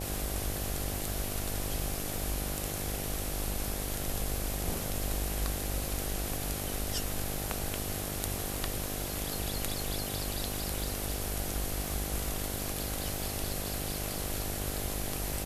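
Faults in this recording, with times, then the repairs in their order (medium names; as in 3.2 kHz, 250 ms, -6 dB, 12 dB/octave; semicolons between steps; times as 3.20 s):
buzz 50 Hz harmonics 16 -39 dBFS
crackle 41 per s -41 dBFS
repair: de-click; de-hum 50 Hz, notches 16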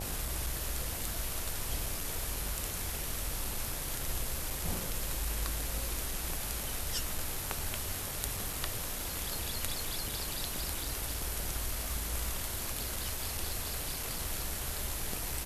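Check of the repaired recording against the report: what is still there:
nothing left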